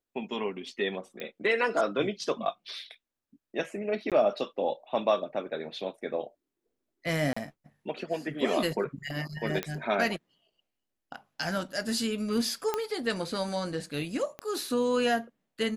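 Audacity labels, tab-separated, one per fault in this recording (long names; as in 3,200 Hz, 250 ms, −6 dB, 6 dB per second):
1.200000	1.200000	click −23 dBFS
4.100000	4.120000	drop-out 17 ms
7.330000	7.370000	drop-out 35 ms
9.630000	9.630000	click −15 dBFS
12.740000	12.740000	click −14 dBFS
14.390000	14.390000	click −23 dBFS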